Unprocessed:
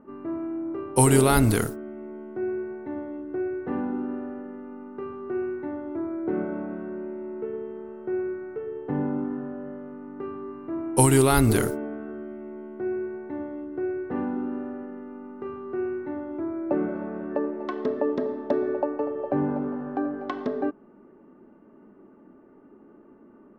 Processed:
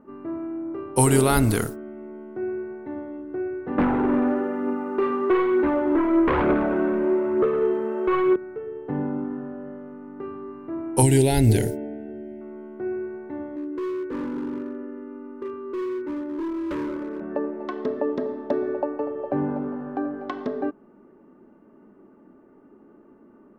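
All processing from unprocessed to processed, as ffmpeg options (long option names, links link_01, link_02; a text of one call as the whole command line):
ffmpeg -i in.wav -filter_complex "[0:a]asettb=1/sr,asplit=3[link_01][link_02][link_03];[link_01]atrim=end=3.784[link_04];[link_02]atrim=start=3.78:end=8.36,asetpts=PTS-STARTPTS,afade=type=in:duration=0.004:curve=qsin,afade=type=out:start_time=4.576:duration=0.004:curve=qsin,highpass=250,aeval=exprs='0.133*sin(PI/2*3.55*val(0)/0.133)':channel_layout=same,aphaser=in_gain=1:out_gain=1:delay=4.3:decay=0.33:speed=1.1:type=triangular[link_05];[link_03]atrim=start=8.356[link_06];[link_04][link_05]acrossfade=duration=0.004:curve1=hsin:curve2=qsin[link_07];[link_07][link_06]acrossfade=duration=0.004:curve1=qsin:curve2=hsin,asettb=1/sr,asplit=3[link_08][link_09][link_10];[link_08]atrim=end=11.024[link_11];[link_09]atrim=start=11.02:end=12.41,asetpts=PTS-STARTPTS,afade=type=in:duration=0.004:curve=qsin,afade=type=out:start_time=1.386:duration=0.004:curve=qsin,asuperstop=centerf=1200:order=4:qfactor=1.3,acrossover=split=9900[link_12][link_13];[link_13]acompressor=threshold=-40dB:ratio=4:attack=1:release=60[link_14];[link_12][link_14]amix=inputs=2:normalize=0,equalizer=frequency=110:width_type=o:width=0.51:gain=6.5[link_15];[link_10]atrim=start=12.406[link_16];[link_11][link_15]acrossfade=duration=0.004:curve1=hsin:curve2=qsin[link_17];[link_17][link_16]acrossfade=duration=0.004:curve1=qsin:curve2=hsin,asettb=1/sr,asplit=3[link_18][link_19][link_20];[link_18]atrim=end=13.564[link_21];[link_19]atrim=start=13.56:end=17.21,asetpts=PTS-STARTPTS,afade=type=in:duration=0.004:curve=qsin,afade=type=out:start_time=3.646:duration=0.004:curve=qsin,lowshelf=frequency=230:width_type=q:width=3:gain=-6.5,volume=26dB,asoftclip=hard,volume=-26dB,asuperstop=centerf=730:order=4:qfactor=2.7[link_22];[link_20]atrim=start=17.206[link_23];[link_21][link_22]acrossfade=duration=0.004:curve1=hsin:curve2=qsin[link_24];[link_24][link_23]acrossfade=duration=0.004:curve1=qsin:curve2=hsin" out.wav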